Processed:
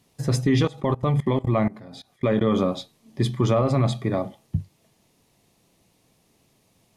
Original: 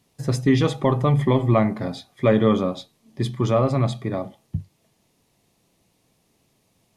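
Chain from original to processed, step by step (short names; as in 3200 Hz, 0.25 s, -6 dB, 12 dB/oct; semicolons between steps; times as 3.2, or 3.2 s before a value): 0.65–2.48 level quantiser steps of 22 dB; limiter -13.5 dBFS, peak gain reduction 6.5 dB; gain +2 dB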